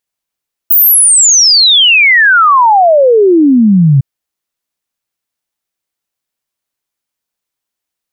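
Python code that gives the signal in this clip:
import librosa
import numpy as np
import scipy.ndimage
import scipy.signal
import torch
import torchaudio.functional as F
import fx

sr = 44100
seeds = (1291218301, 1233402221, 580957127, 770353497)

y = fx.ess(sr, length_s=3.31, from_hz=16000.0, to_hz=130.0, level_db=-3.0)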